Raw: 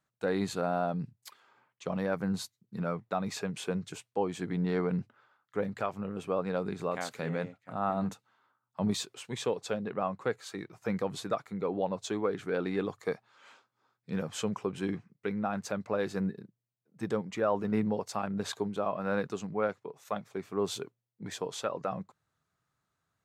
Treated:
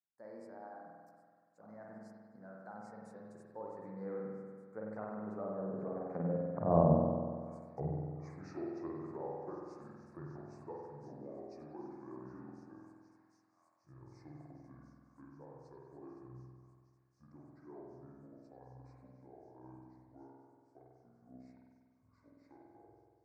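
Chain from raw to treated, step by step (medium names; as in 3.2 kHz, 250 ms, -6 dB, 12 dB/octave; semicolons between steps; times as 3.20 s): pitch bend over the whole clip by -6.5 st starting unshifted; Doppler pass-by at 6.72 s, 50 m/s, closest 9.6 m; feedback echo behind a high-pass 763 ms, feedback 85%, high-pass 3.6 kHz, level -17.5 dB; low-pass that closes with the level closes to 440 Hz, closed at -45 dBFS; Butterworth band-stop 3.1 kHz, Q 0.91; peaking EQ 610 Hz +5 dB 2.6 oct; spring tank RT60 1.8 s, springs 47 ms, chirp 50 ms, DRR -3 dB; trim +4 dB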